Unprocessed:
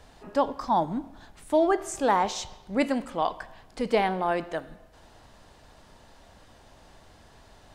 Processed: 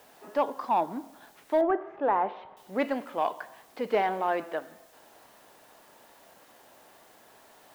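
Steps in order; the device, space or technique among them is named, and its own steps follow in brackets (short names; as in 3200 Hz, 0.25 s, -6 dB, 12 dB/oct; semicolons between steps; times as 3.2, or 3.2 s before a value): tape answering machine (BPF 320–2900 Hz; soft clip -15 dBFS, distortion -20 dB; wow and flutter; white noise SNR 30 dB); 1.61–2.57 Bessel low-pass 1600 Hz, order 4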